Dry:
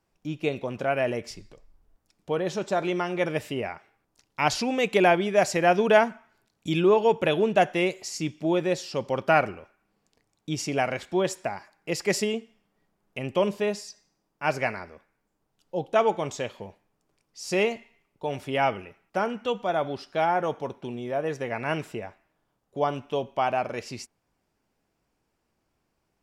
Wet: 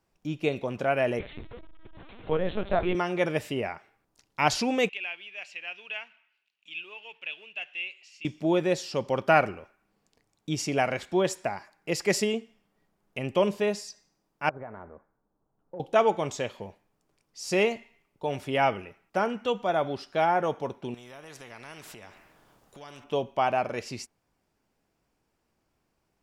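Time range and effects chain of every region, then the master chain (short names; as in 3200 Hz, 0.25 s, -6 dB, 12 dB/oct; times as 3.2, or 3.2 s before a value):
1.19–2.95 zero-crossing step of -40 dBFS + LPC vocoder at 8 kHz pitch kept
4.89–8.25 G.711 law mismatch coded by mu + band-pass 2700 Hz, Q 7.7
14.49–15.8 LPF 1300 Hz 24 dB/oct + compressor 8:1, threshold -36 dBFS
20.94–23.04 compressor 2:1, threshold -51 dBFS + spectral compressor 2:1
whole clip: dry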